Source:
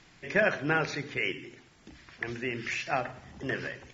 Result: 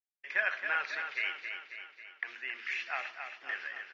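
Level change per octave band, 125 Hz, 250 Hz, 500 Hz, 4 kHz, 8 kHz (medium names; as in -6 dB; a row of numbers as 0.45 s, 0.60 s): under -35 dB, under -25 dB, -16.0 dB, -3.5 dB, no reading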